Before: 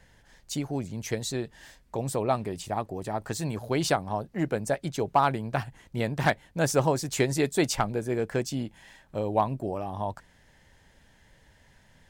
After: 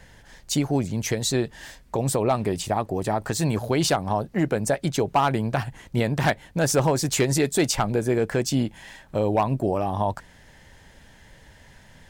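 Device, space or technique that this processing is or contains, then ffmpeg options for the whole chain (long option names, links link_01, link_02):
clipper into limiter: -af "asoftclip=type=hard:threshold=-16dB,alimiter=limit=-21.5dB:level=0:latency=1:release=109,volume=8.5dB"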